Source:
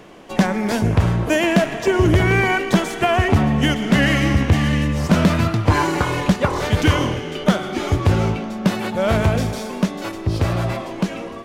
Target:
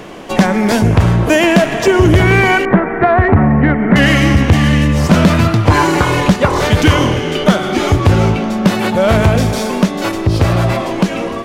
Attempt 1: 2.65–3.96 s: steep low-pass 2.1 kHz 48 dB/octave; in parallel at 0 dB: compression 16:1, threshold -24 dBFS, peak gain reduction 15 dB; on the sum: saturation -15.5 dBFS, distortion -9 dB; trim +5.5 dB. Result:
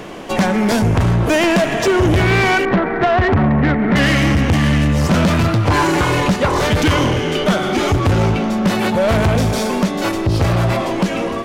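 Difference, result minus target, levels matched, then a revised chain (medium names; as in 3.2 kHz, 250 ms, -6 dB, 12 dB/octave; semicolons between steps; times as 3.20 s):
saturation: distortion +12 dB
2.65–3.96 s: steep low-pass 2.1 kHz 48 dB/octave; in parallel at 0 dB: compression 16:1, threshold -24 dBFS, peak gain reduction 15 dB; on the sum: saturation -5.5 dBFS, distortion -21 dB; trim +5.5 dB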